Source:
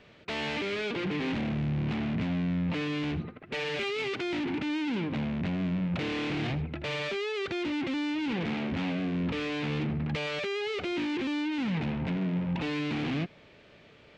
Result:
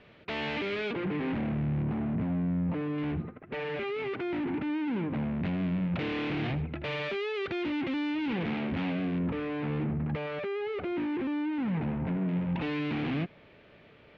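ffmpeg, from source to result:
-af "asetnsamples=n=441:p=0,asendcmd='0.93 lowpass f 1900;1.83 lowpass f 1200;2.98 lowpass f 1800;5.41 lowpass f 3200;9.19 lowpass f 1600;12.28 lowpass f 3000',lowpass=3.5k"

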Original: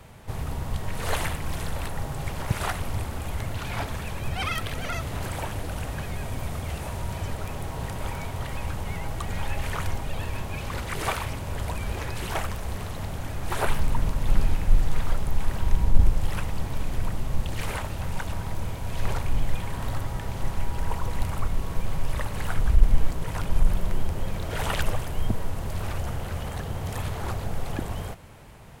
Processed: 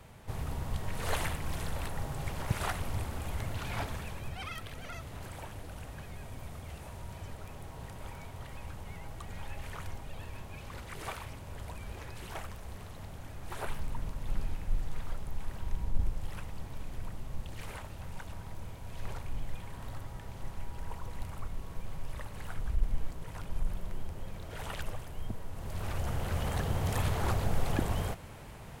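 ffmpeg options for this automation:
-af "volume=7dB,afade=t=out:st=3.83:d=0.59:silence=0.446684,afade=t=in:st=25.49:d=1.05:silence=0.237137"

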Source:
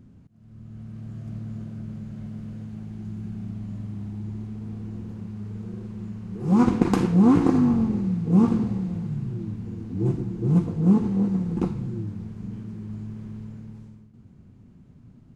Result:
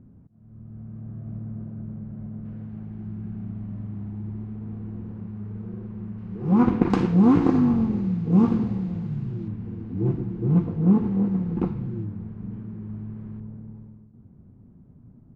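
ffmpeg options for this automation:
-af "asetnsamples=n=441:p=0,asendcmd='2.45 lowpass f 1800;6.18 lowpass f 2600;6.9 lowpass f 4400;9.48 lowpass f 2500;12.05 lowpass f 1700;13.4 lowpass f 1000',lowpass=1.1k"

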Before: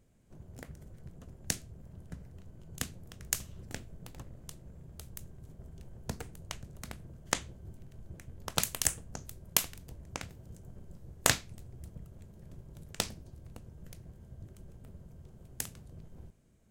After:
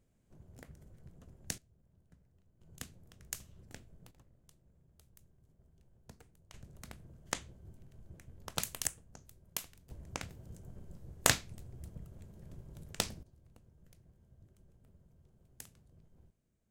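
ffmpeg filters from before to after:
-af "asetnsamples=n=441:p=0,asendcmd='1.58 volume volume -19dB;2.61 volume volume -9.5dB;4.11 volume volume -17dB;6.54 volume volume -6dB;8.87 volume volume -12dB;9.9 volume volume -1dB;13.23 volume volume -13dB',volume=-6.5dB"

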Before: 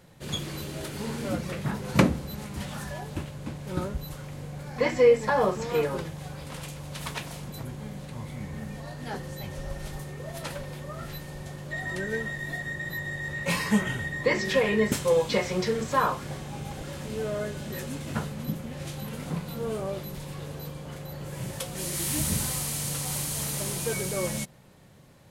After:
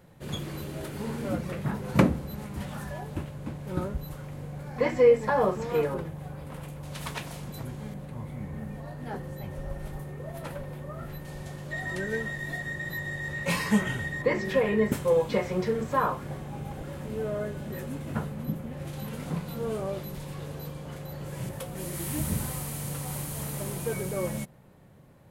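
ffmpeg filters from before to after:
-af "asetnsamples=n=441:p=0,asendcmd='5.94 equalizer g -15;6.83 equalizer g -3;7.94 equalizer g -13;11.25 equalizer g -2;14.22 equalizer g -11.5;18.93 equalizer g -3.5;21.49 equalizer g -11.5',equalizer=f=5.4k:t=o:w=2.3:g=-8"

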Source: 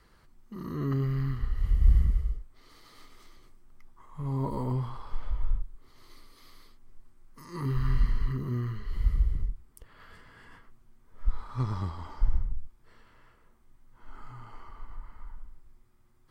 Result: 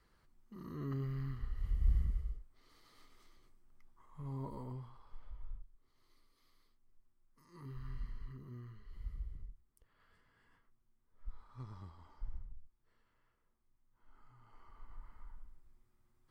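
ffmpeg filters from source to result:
-af "volume=-1dB,afade=t=out:st=4.18:d=0.75:silence=0.398107,afade=t=in:st=14.39:d=0.64:silence=0.334965"

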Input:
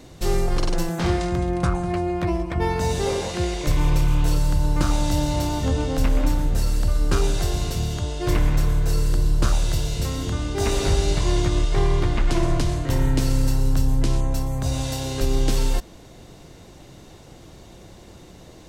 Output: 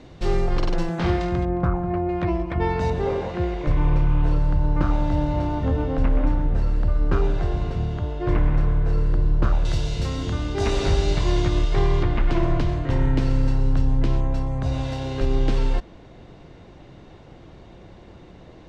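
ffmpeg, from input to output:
-af "asetnsamples=n=441:p=0,asendcmd='1.45 lowpass f 1400;2.09 lowpass f 3200;2.9 lowpass f 1800;9.65 lowpass f 4600;12.03 lowpass f 2800',lowpass=3.6k"

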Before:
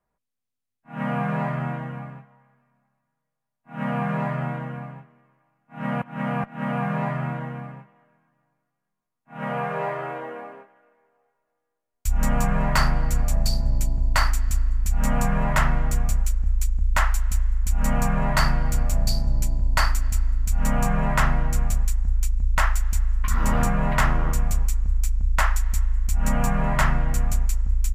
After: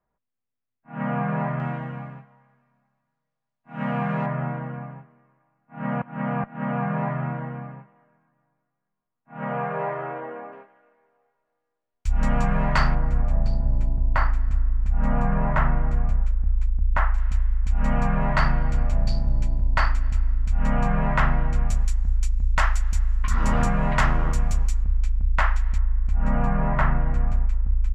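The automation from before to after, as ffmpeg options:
-af "asetnsamples=n=441:p=0,asendcmd='1.6 lowpass f 5100;4.26 lowpass f 2000;10.53 lowpass f 3900;12.95 lowpass f 1600;17.18 lowpass f 2900;21.69 lowpass f 6300;24.83 lowpass f 3100;25.78 lowpass f 1700',lowpass=2.2k"

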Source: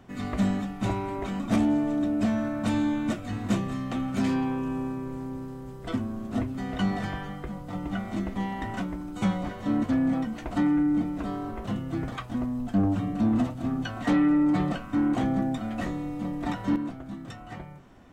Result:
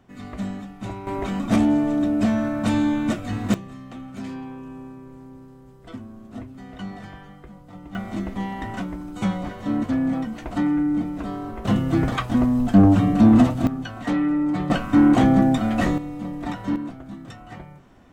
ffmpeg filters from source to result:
-af "asetnsamples=n=441:p=0,asendcmd='1.07 volume volume 5dB;3.54 volume volume -7.5dB;7.95 volume volume 2dB;11.65 volume volume 10.5dB;13.67 volume volume 0dB;14.7 volume volume 10dB;15.98 volume volume 1dB',volume=-4.5dB"

